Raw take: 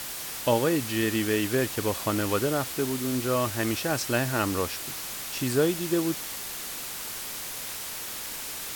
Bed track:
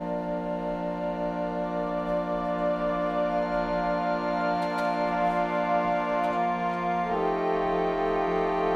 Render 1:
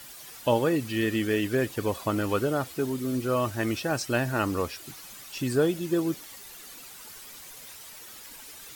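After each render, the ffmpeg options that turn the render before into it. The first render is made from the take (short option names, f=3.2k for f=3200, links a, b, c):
-af "afftdn=nr=12:nf=-36"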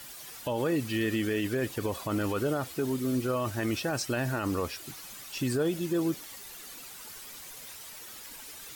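-af "alimiter=limit=-21dB:level=0:latency=1:release=30"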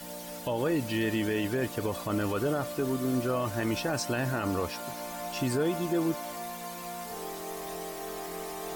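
-filter_complex "[1:a]volume=-13dB[a];[0:a][a]amix=inputs=2:normalize=0"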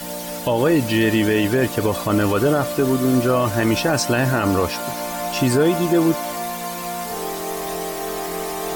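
-af "volume=11.5dB"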